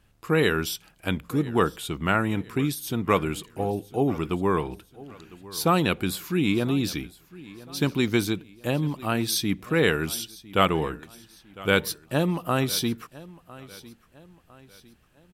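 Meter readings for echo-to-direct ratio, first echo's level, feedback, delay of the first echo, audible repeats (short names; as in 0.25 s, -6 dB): -19.0 dB, -20.0 dB, 42%, 1.004 s, 2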